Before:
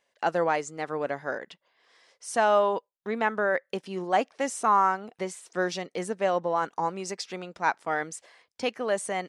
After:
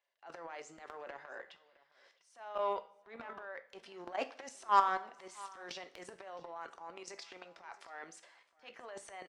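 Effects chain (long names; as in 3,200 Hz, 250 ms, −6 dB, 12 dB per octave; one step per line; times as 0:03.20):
three-way crossover with the lows and the highs turned down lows −17 dB, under 440 Hz, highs −13 dB, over 5,800 Hz
notch filter 480 Hz, Q 12
output level in coarse steps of 21 dB
transient designer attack −12 dB, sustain +11 dB
harmonic generator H 7 −26 dB, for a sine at −13 dBFS
on a send: single-tap delay 663 ms −21.5 dB
on the sum: coupled-rooms reverb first 0.42 s, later 1.5 s, from −19 dB, DRR 9.5 dB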